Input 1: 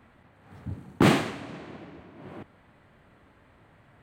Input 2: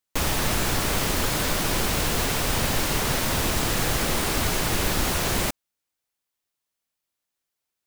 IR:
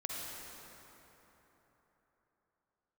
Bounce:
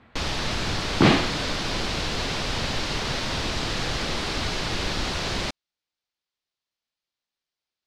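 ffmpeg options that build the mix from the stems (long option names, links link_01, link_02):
-filter_complex "[0:a]volume=2dB[link_01];[1:a]volume=-3.5dB[link_02];[link_01][link_02]amix=inputs=2:normalize=0,lowpass=frequency=4500:width_type=q:width=1.7"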